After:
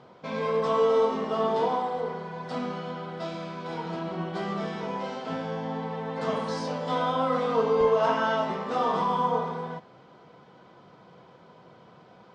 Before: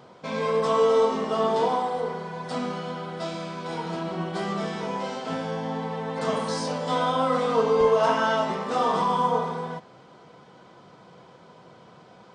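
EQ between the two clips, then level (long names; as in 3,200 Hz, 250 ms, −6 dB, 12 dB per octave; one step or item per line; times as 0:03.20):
high-frequency loss of the air 98 metres
−2.0 dB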